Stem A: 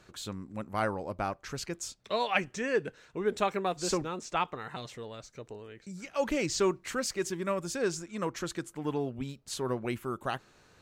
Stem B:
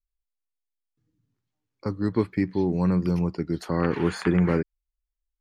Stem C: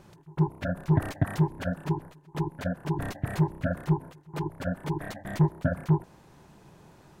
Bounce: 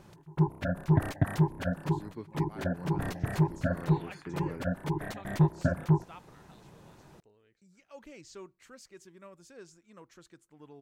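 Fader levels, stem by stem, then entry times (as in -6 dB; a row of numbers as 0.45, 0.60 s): -19.5, -19.0, -1.0 dB; 1.75, 0.00, 0.00 s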